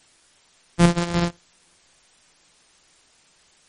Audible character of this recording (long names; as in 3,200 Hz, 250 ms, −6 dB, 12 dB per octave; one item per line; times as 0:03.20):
a buzz of ramps at a fixed pitch in blocks of 256 samples
sample-and-hold tremolo 3.5 Hz, depth 55%
a quantiser's noise floor 10 bits, dither triangular
MP3